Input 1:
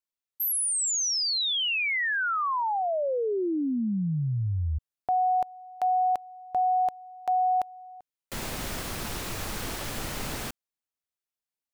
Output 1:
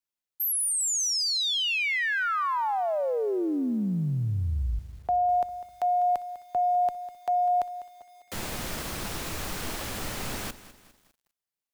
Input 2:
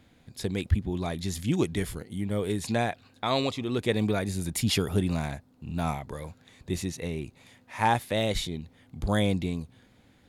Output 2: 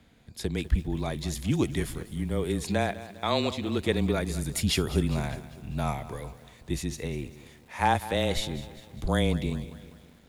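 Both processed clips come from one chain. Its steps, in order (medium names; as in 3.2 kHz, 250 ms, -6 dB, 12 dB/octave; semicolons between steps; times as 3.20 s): frequency shift -22 Hz; bit-crushed delay 200 ms, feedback 55%, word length 8-bit, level -15 dB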